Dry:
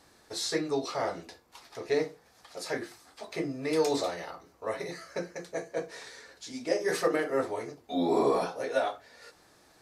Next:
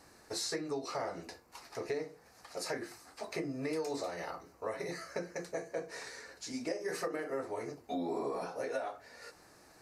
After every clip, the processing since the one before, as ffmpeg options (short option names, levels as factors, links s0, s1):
-af "equalizer=f=3400:w=4.7:g=-11,acompressor=threshold=0.0178:ratio=6,volume=1.12"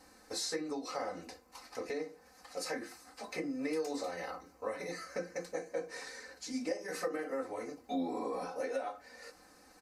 -af "aecho=1:1:3.9:0.83,volume=0.75"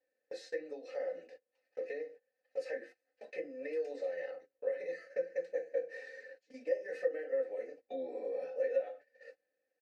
-filter_complex "[0:a]asplit=3[s0][s1][s2];[s0]bandpass=f=530:t=q:w=8,volume=1[s3];[s1]bandpass=f=1840:t=q:w=8,volume=0.501[s4];[s2]bandpass=f=2480:t=q:w=8,volume=0.355[s5];[s3][s4][s5]amix=inputs=3:normalize=0,agate=range=0.1:threshold=0.00126:ratio=16:detection=peak,volume=2"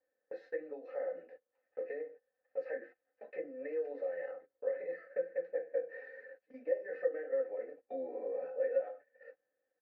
-af "lowpass=f=1400:t=q:w=1.5,volume=0.891"